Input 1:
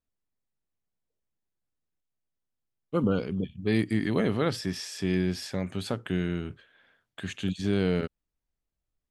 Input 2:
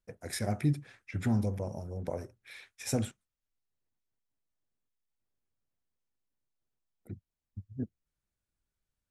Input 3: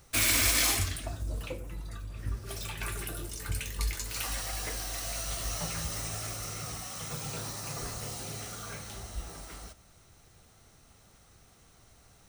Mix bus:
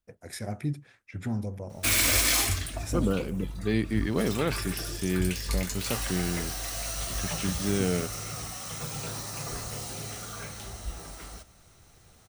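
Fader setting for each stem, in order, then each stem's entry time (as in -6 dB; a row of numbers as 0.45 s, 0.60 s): -1.5 dB, -2.5 dB, +2.0 dB; 0.00 s, 0.00 s, 1.70 s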